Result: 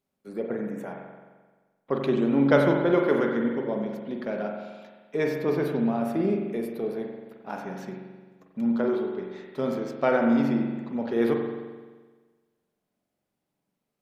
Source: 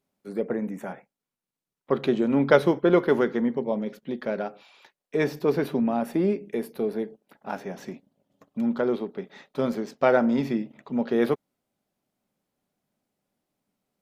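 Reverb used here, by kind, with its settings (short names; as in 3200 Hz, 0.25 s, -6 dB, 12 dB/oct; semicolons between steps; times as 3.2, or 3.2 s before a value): spring tank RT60 1.4 s, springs 43 ms, chirp 70 ms, DRR 1.5 dB; gain -3.5 dB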